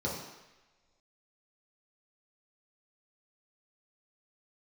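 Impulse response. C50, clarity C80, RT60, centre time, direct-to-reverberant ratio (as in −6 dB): 2.5 dB, 5.5 dB, non-exponential decay, 53 ms, −5.0 dB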